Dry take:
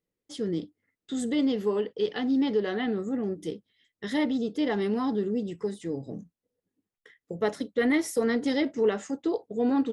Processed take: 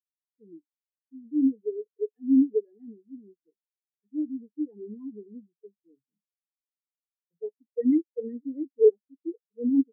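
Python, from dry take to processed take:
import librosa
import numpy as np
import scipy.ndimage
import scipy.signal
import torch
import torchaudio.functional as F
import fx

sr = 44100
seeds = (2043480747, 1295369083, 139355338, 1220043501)

y = fx.spectral_expand(x, sr, expansion=4.0)
y = y * 10.0 ** (5.5 / 20.0)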